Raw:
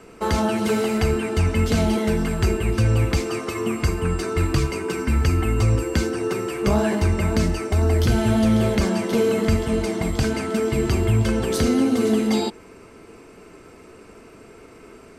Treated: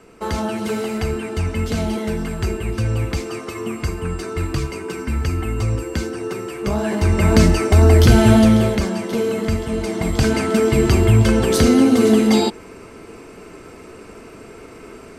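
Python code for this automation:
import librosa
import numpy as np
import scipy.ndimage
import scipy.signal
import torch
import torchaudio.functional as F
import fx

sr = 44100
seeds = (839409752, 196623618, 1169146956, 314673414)

y = fx.gain(x, sr, db=fx.line((6.79, -2.0), (7.34, 8.0), (8.34, 8.0), (8.88, -1.0), (9.73, -1.0), (10.34, 6.0)))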